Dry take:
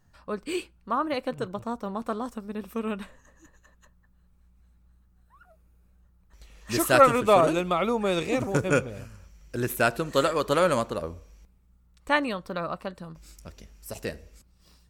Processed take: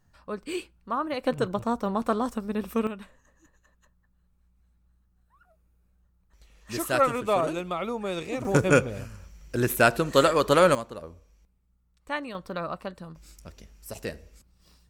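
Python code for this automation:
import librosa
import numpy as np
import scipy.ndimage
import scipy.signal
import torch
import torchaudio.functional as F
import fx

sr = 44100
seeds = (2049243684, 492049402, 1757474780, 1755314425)

y = fx.gain(x, sr, db=fx.steps((0.0, -2.0), (1.24, 5.0), (2.87, -5.5), (8.45, 3.5), (10.75, -8.0), (12.35, -1.0)))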